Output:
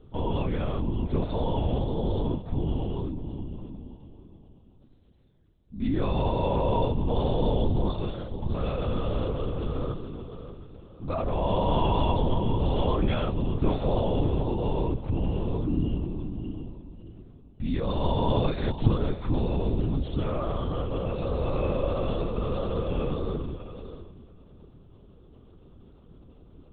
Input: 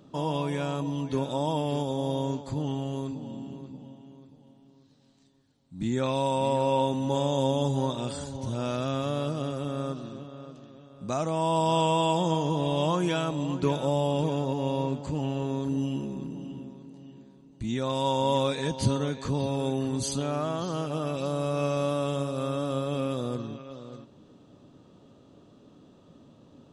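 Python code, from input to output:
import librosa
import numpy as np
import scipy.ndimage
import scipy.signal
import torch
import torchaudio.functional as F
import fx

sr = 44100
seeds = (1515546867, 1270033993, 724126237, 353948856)

y = x + 10.0 ** (-17.5 / 20.0) * np.pad(x, (int(710 * sr / 1000.0), 0))[:len(x)]
y = fx.lpc_vocoder(y, sr, seeds[0], excitation='whisper', order=8)
y = fx.low_shelf(y, sr, hz=300.0, db=8.0)
y = F.gain(torch.from_numpy(y), -3.0).numpy()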